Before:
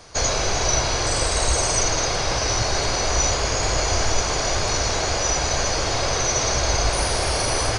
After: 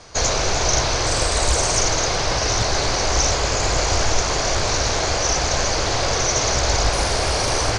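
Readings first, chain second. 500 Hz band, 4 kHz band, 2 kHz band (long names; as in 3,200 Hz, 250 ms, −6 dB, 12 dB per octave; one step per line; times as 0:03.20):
+2.0 dB, +2.0 dB, +2.0 dB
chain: Butterworth low-pass 9,100 Hz 48 dB per octave
highs frequency-modulated by the lows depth 0.48 ms
level +2 dB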